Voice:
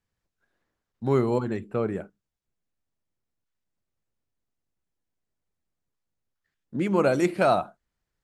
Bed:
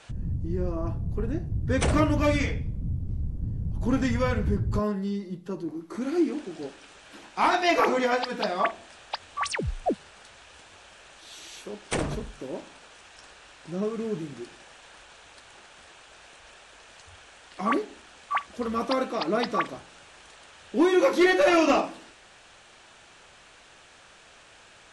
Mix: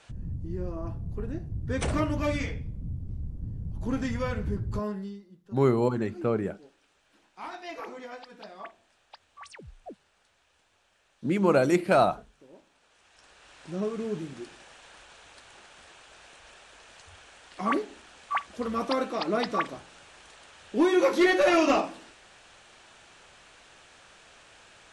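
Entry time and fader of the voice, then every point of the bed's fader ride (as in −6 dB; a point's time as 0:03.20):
4.50 s, 0.0 dB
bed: 0:05.01 −5 dB
0:05.26 −17.5 dB
0:12.69 −17.5 dB
0:13.59 −1.5 dB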